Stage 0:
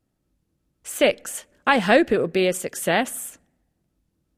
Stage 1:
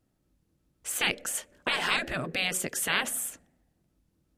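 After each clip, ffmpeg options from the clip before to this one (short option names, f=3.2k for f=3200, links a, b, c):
-af "afftfilt=real='re*lt(hypot(re,im),0.282)':imag='im*lt(hypot(re,im),0.282)':win_size=1024:overlap=0.75"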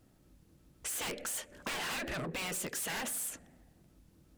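-af "aeval=exprs='0.0708*(abs(mod(val(0)/0.0708+3,4)-2)-1)':c=same,aeval=exprs='0.075*(cos(1*acos(clip(val(0)/0.075,-1,1)))-cos(1*PI/2))+0.0266*(cos(5*acos(clip(val(0)/0.075,-1,1)))-cos(5*PI/2))':c=same,acompressor=threshold=-41dB:ratio=2.5"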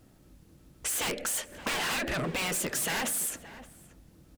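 -filter_complex "[0:a]asplit=2[a][b];[b]adelay=571.4,volume=-15dB,highshelf=f=4k:g=-12.9[c];[a][c]amix=inputs=2:normalize=0,volume=6.5dB"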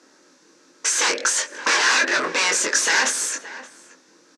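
-filter_complex "[0:a]crystalizer=i=2:c=0,highpass=f=320:w=0.5412,highpass=f=320:w=1.3066,equalizer=f=700:t=q:w=4:g=-8,equalizer=f=1k:t=q:w=4:g=5,equalizer=f=1.6k:t=q:w=4:g=7,equalizer=f=3.1k:t=q:w=4:g=-6,equalizer=f=6k:t=q:w=4:g=5,lowpass=f=6.2k:w=0.5412,lowpass=f=6.2k:w=1.3066,asplit=2[a][b];[b]adelay=23,volume=-4dB[c];[a][c]amix=inputs=2:normalize=0,volume=8dB"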